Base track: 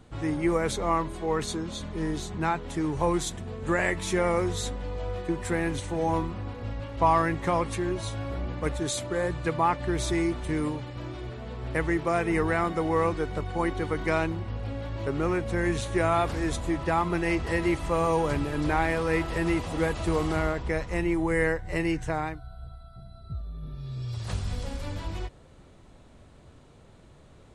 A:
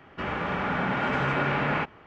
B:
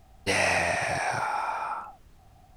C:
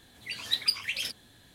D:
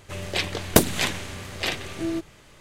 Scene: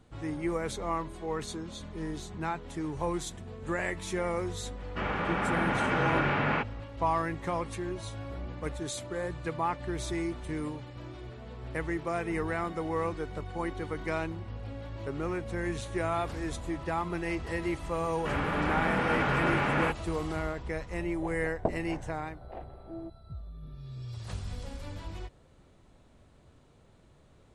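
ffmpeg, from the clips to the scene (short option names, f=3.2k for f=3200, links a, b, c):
-filter_complex "[1:a]asplit=2[a][b];[0:a]volume=-6.5dB[c];[4:a]lowpass=f=740:t=q:w=3.2[d];[a]atrim=end=2.06,asetpts=PTS-STARTPTS,volume=-2dB,afade=t=in:d=0.004:c=hsin,afade=t=out:st=2.056:d=0.004:c=hsin,adelay=4780[e];[b]atrim=end=2.06,asetpts=PTS-STARTPTS,volume=-2dB,afade=t=in:d=0.004:c=hsin,afade=t=out:st=2.056:d=0.004:c=hsin,adelay=18070[f];[d]atrim=end=2.6,asetpts=PTS-STARTPTS,volume=-16dB,afade=t=in:d=0.004:c=hsin,afade=t=out:st=2.596:d=0.004:c=hsin,adelay=20890[g];[c][e][f][g]amix=inputs=4:normalize=0"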